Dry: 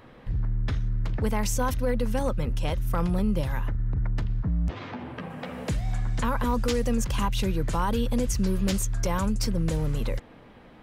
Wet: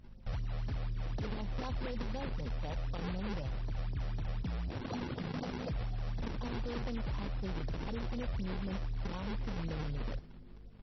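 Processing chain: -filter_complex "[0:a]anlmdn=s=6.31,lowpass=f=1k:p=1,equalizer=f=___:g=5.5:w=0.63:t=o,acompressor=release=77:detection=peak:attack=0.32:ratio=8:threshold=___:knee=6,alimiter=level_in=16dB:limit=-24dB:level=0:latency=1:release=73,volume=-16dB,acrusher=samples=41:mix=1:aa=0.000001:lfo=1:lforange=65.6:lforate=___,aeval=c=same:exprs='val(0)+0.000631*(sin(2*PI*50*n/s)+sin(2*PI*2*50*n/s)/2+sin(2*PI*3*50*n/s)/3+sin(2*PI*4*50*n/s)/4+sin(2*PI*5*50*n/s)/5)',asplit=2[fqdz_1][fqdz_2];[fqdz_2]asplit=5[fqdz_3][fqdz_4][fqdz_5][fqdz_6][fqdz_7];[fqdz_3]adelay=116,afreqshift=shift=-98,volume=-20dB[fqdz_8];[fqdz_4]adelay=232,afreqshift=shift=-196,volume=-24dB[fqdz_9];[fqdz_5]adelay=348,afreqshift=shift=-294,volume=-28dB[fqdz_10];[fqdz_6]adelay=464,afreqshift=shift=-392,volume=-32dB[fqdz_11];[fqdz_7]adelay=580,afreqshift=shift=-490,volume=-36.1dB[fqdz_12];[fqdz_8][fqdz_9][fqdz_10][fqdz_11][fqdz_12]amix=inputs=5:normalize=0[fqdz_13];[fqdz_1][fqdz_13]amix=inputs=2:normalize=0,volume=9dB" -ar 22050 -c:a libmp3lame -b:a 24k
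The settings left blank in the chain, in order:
740, -36dB, 4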